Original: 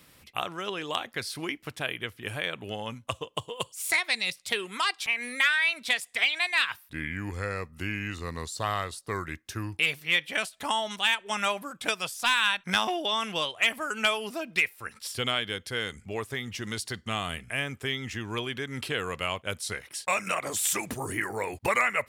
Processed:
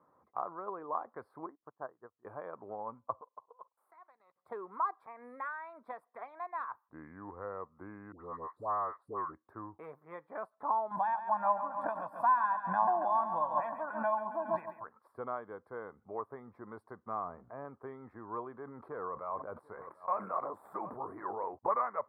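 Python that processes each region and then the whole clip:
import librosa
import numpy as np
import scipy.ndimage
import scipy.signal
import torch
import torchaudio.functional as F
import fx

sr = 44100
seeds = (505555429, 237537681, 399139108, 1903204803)

y = fx.chain(x, sr, fx.steep_lowpass(hz=1900.0, slope=96),
    fx.upward_expand(threshold_db=-46.0, expansion=2.5), at=(1.46, 2.25))
y = fx.chain(y, sr, fx.halfwave_gain(db=-3.0),
    fx.highpass(hz=1300.0, slope=6),
    fx.level_steps(step_db=21), at=(3.21, 4.36))
y = fx.chain(y, sr, fx.dynamic_eq(hz=1800.0, q=5.9, threshold_db=-52.0, ratio=4.0, max_db=6),
    fx.dispersion(late='highs', ms=96.0, hz=890.0), at=(8.12, 9.34))
y = fx.chain(y, sr, fx.comb(ms=1.2, depth=0.95),
    fx.echo_feedback(ms=138, feedback_pct=58, wet_db=-10),
    fx.pre_swell(db_per_s=95.0), at=(10.91, 14.84))
y = fx.chain(y, sr, fx.law_mismatch(coded='mu'),
    fx.lowpass(hz=1000.0, slope=6), at=(17.24, 17.65))
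y = fx.chain(y, sr, fx.tube_stage(drive_db=17.0, bias=0.35),
    fx.echo_single(ms=741, db=-23.0),
    fx.sustainer(db_per_s=32.0), at=(18.52, 21.45))
y = scipy.signal.sosfilt(scipy.signal.ellip(4, 1.0, 60, 1100.0, 'lowpass', fs=sr, output='sos'), y)
y = np.diff(y, prepend=0.0)
y = F.gain(torch.from_numpy(y), 17.0).numpy()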